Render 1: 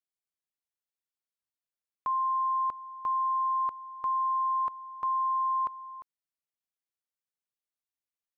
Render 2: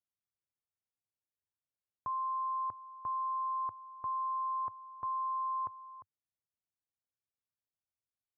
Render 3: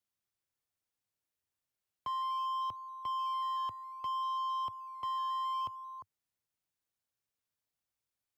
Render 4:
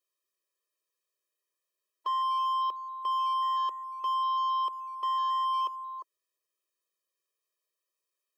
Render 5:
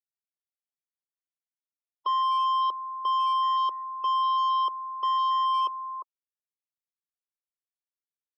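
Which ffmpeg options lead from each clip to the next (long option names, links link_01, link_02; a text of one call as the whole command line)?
ffmpeg -i in.wav -af "lowpass=1200,equalizer=frequency=100:width_type=o:width=1.1:gain=14.5,volume=-5dB" out.wav
ffmpeg -i in.wav -filter_complex "[0:a]asoftclip=type=tanh:threshold=-37dB,acrossover=split=200|510[link_01][link_02][link_03];[link_02]acrusher=samples=12:mix=1:aa=0.000001:lfo=1:lforange=7.2:lforate=0.62[link_04];[link_01][link_04][link_03]amix=inputs=3:normalize=0,volume=4.5dB" out.wav
ffmpeg -i in.wav -af "afftfilt=real='re*eq(mod(floor(b*sr/1024/330),2),1)':imag='im*eq(mod(floor(b*sr/1024/330),2),1)':win_size=1024:overlap=0.75,volume=6.5dB" out.wav
ffmpeg -i in.wav -af "asuperstop=centerf=1700:order=12:qfactor=4.9,afftfilt=real='re*gte(hypot(re,im),0.00282)':imag='im*gte(hypot(re,im),0.00282)':win_size=1024:overlap=0.75,volume=4dB" out.wav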